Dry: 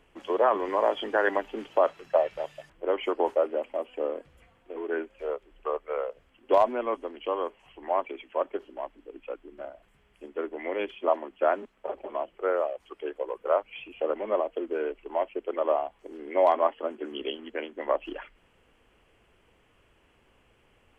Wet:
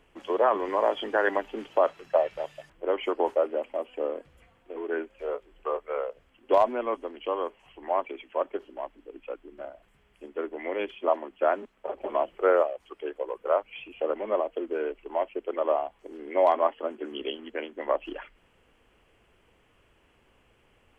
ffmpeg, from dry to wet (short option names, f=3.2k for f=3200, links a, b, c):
-filter_complex "[0:a]asettb=1/sr,asplit=3[a][b][c];[a]atrim=end=5.264[d];[b]atrim=start=5.26:end=5.99,asetpts=PTS-STARTPTS,afade=t=in:d=0.004:c=qsin,afade=t=out:st=0.726:d=0.004:c=qsin,asplit=2[e][f];[f]adelay=21,volume=-7.5dB[g];[e][g]amix=inputs=2:normalize=0,atrim=end_sample=32193[h];[c]atrim=start=5.986[i];[d][h]acrossfade=d=0.004:c1=hsin:c2=qsin[j];[j][i]acrossfade=d=0.004:c1=qsin:c2=hsin,asettb=1/sr,asplit=3[k][l][m];[k]atrim=end=12.014[n];[l]atrim=start=12.01:end=12.63,asetpts=PTS-STARTPTS,afade=t=in:d=0.004:c=qsin,afade=t=out:st=0.616:d=0.004:c=qsin,acontrast=34[o];[m]atrim=start=12.626[p];[n][o]acrossfade=d=0.004:c1=hsin:c2=qsin[q];[q][p]acrossfade=d=0.004:c1=qsin:c2=hsin"